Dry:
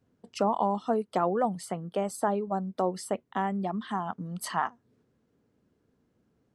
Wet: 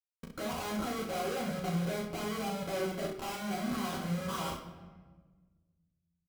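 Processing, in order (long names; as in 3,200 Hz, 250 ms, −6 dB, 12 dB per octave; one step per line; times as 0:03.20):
one-sided soft clipper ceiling −19 dBFS
mains-hum notches 60/120/180/240/300/360/420/480 Hz
noise reduction from a noise print of the clip's start 10 dB
Butterworth low-pass 1,500 Hz 96 dB per octave
in parallel at +1.5 dB: compressor whose output falls as the input rises −36 dBFS, ratio −0.5
on the sum: brickwall limiter −22 dBFS, peak gain reduction 9 dB
comparator with hysteresis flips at −43 dBFS
notch comb filter 870 Hz
on a send: ambience of single reflections 13 ms −3.5 dB, 38 ms −4 dB, 68 ms −5 dB
on the sum: rectangular room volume 1,400 cubic metres, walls mixed, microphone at 0.93 metres
wrong playback speed 24 fps film run at 25 fps
level −6 dB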